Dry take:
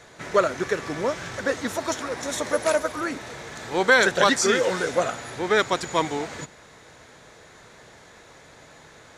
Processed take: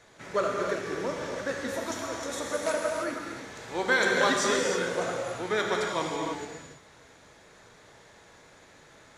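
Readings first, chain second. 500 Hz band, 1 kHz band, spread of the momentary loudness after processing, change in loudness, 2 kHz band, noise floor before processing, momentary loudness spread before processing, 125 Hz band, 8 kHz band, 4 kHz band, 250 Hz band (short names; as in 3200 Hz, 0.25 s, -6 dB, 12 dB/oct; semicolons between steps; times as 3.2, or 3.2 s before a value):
-5.5 dB, -5.5 dB, 12 LU, -5.5 dB, -5.0 dB, -50 dBFS, 13 LU, -5.5 dB, -5.0 dB, -5.0 dB, -5.0 dB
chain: non-linear reverb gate 0.35 s flat, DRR -0.5 dB; gain -8.5 dB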